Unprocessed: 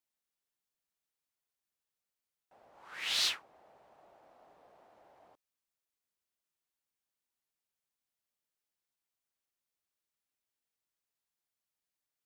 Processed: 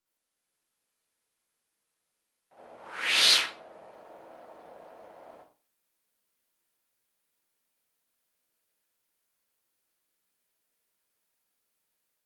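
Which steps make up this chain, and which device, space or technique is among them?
far-field microphone of a smart speaker (reverberation RT60 0.35 s, pre-delay 57 ms, DRR -8.5 dB; high-pass 120 Hz 12 dB/octave; level rider gain up to 4 dB; Opus 32 kbps 48 kHz)

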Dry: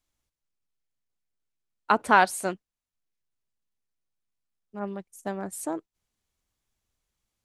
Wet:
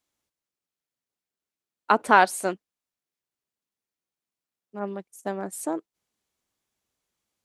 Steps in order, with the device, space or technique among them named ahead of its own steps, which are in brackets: filter by subtraction (in parallel: low-pass 330 Hz 12 dB/octave + polarity flip); on the sum: trim +1 dB

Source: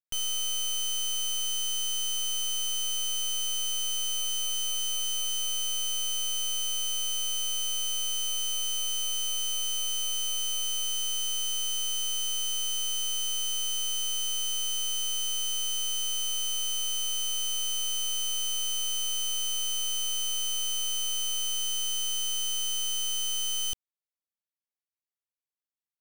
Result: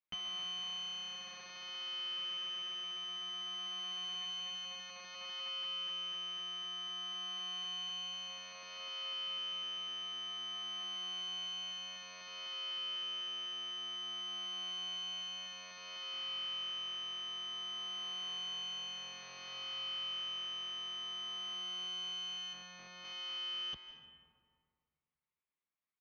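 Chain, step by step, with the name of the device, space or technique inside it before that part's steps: steep low-pass 6.5 kHz 72 dB/octave; barber-pole flanger into a guitar amplifier (endless flanger 8.1 ms +0.28 Hz; saturation -35.5 dBFS, distortion -8 dB; cabinet simulation 80–3700 Hz, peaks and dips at 96 Hz -10 dB, 190 Hz +4 dB, 1.1 kHz +8 dB, 2.2 kHz +7 dB); 22.53–23.05 s: tilt EQ -2 dB/octave; algorithmic reverb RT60 2.1 s, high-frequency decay 0.45×, pre-delay 115 ms, DRR 7.5 dB; trim +2 dB

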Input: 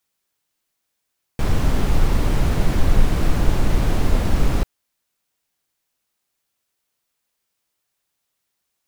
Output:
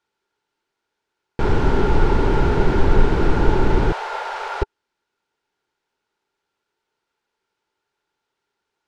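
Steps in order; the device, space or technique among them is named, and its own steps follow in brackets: 3.92–4.62 s: inverse Chebyshev high-pass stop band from 300 Hz, stop band 40 dB; inside a cardboard box (low-pass 4.4 kHz 12 dB/octave; small resonant body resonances 400/880/1400 Hz, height 13 dB, ringing for 30 ms)

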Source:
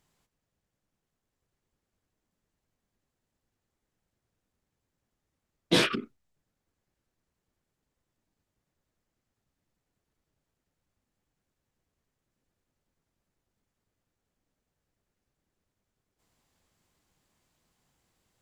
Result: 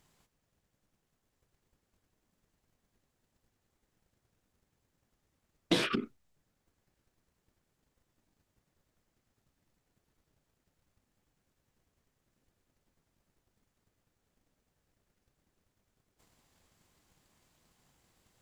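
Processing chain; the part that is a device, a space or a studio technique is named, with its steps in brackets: drum-bus smash (transient shaper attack +7 dB, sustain 0 dB; compression 10:1, threshold -26 dBFS, peak gain reduction 14.5 dB; saturation -21 dBFS, distortion -15 dB); trim +3.5 dB

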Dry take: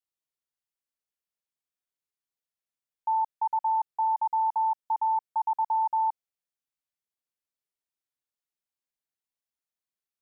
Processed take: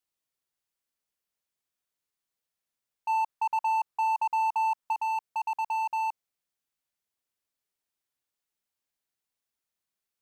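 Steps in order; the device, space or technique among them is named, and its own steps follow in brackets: clipper into limiter (hard clipper -27 dBFS, distortion -13 dB; peak limiter -31.5 dBFS, peak gain reduction 4.5 dB); 3.09–4.93 s: peaking EQ 1.1 kHz +4.5 dB 0.83 oct; trim +4.5 dB

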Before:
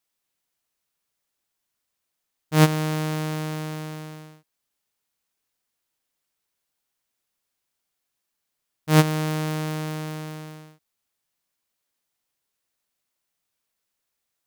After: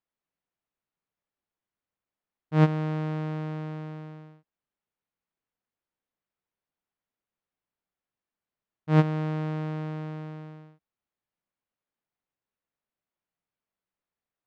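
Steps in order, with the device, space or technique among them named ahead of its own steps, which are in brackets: phone in a pocket (low-pass 3.3 kHz 12 dB/octave; peaking EQ 180 Hz +3.5 dB 0.34 oct; treble shelf 2.1 kHz -10 dB); trim -4 dB

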